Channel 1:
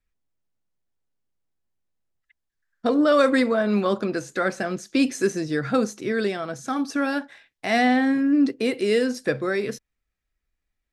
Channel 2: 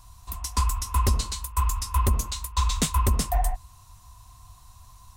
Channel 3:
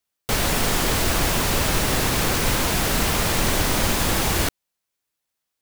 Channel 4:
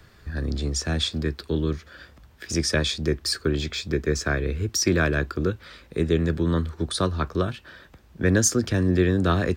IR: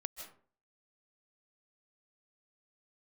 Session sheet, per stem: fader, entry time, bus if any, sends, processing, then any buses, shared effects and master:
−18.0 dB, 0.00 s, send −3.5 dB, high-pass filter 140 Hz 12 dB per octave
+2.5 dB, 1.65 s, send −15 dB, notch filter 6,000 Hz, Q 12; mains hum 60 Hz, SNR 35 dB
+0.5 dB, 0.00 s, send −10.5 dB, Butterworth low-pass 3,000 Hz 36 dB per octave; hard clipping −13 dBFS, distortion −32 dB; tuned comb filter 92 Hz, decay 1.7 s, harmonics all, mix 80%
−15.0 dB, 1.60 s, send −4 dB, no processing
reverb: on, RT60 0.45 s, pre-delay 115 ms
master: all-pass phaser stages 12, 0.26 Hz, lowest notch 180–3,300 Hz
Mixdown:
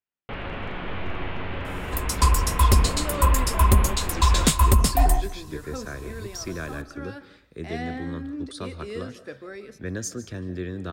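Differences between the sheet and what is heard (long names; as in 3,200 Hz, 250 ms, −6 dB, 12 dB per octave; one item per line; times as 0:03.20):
stem 2: send −15 dB → −6.5 dB
master: missing all-pass phaser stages 12, 0.26 Hz, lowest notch 180–3,300 Hz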